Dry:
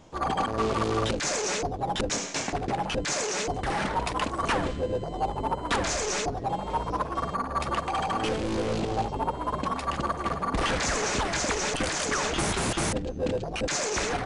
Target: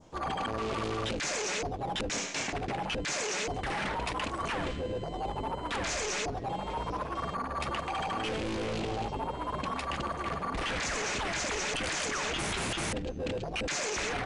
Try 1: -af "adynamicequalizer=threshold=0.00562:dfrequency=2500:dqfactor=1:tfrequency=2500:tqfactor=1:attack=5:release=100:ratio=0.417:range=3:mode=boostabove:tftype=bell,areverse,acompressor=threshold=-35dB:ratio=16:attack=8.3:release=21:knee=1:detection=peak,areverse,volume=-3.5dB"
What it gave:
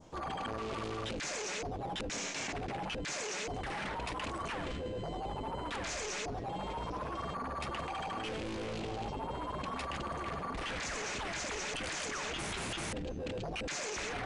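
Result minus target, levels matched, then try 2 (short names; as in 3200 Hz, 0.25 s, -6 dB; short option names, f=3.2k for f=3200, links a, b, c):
compressor: peak gain reduction +5.5 dB
-af "adynamicequalizer=threshold=0.00562:dfrequency=2500:dqfactor=1:tfrequency=2500:tqfactor=1:attack=5:release=100:ratio=0.417:range=3:mode=boostabove:tftype=bell,areverse,acompressor=threshold=-29dB:ratio=16:attack=8.3:release=21:knee=1:detection=peak,areverse,volume=-3.5dB"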